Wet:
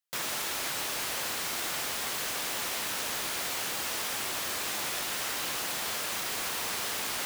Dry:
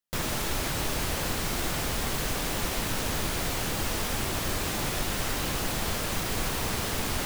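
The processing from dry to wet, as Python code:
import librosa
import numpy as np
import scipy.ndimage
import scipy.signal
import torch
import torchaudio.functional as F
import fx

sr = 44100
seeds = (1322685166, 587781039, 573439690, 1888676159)

y = fx.highpass(x, sr, hz=990.0, slope=6)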